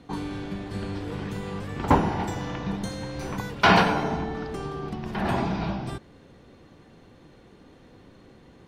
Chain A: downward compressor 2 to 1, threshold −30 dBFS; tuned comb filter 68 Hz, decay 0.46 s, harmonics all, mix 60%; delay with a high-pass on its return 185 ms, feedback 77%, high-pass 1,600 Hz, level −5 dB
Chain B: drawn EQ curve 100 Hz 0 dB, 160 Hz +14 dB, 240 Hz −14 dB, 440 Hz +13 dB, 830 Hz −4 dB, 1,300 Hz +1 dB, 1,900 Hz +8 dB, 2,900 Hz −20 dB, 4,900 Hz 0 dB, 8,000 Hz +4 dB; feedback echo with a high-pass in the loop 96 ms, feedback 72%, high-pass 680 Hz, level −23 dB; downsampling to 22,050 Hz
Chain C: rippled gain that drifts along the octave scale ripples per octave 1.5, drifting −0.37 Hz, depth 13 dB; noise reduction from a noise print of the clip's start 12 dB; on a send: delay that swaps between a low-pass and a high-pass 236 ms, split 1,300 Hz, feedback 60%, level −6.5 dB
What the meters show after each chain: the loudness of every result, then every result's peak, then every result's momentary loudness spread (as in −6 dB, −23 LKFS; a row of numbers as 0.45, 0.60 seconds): −37.5, −23.0, −24.0 LKFS; −20.0, −2.5, −3.5 dBFS; 23, 14, 22 LU